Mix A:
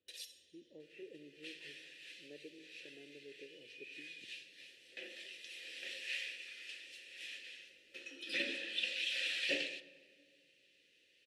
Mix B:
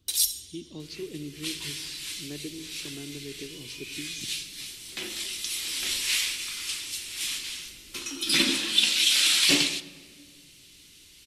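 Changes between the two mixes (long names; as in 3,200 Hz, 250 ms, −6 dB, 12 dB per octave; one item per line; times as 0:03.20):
speech: remove low-pass filter 1,400 Hz
master: remove formant filter e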